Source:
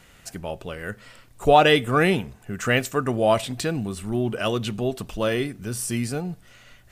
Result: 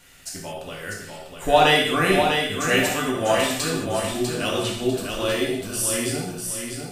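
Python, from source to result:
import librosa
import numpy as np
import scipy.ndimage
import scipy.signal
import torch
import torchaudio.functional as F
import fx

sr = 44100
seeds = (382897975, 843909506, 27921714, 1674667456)

y = fx.high_shelf(x, sr, hz=2300.0, db=9.0)
y = fx.echo_feedback(y, sr, ms=647, feedback_pct=33, wet_db=-5.5)
y = fx.rev_gated(y, sr, seeds[0], gate_ms=250, shape='falling', drr_db=-3.0)
y = y * librosa.db_to_amplitude(-6.5)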